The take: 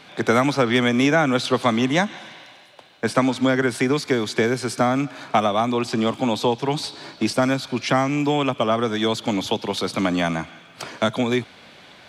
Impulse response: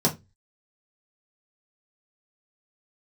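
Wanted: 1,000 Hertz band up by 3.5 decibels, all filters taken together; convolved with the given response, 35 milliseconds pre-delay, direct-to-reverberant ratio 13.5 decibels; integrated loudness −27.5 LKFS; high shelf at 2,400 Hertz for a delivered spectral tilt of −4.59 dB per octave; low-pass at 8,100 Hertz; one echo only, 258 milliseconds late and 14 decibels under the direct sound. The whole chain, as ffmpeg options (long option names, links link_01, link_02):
-filter_complex "[0:a]lowpass=8100,equalizer=frequency=1000:width_type=o:gain=5.5,highshelf=frequency=2400:gain=-4,aecho=1:1:258:0.2,asplit=2[link_01][link_02];[1:a]atrim=start_sample=2205,adelay=35[link_03];[link_02][link_03]afir=irnorm=-1:irlink=0,volume=-26dB[link_04];[link_01][link_04]amix=inputs=2:normalize=0,volume=-8dB"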